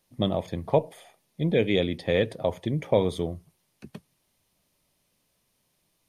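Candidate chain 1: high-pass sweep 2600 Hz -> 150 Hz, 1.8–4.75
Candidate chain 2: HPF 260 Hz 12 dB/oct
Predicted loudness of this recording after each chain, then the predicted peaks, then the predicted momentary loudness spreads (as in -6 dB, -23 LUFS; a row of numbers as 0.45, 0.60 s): -31.0, -28.0 LUFS; -11.5, -8.5 dBFS; 20, 11 LU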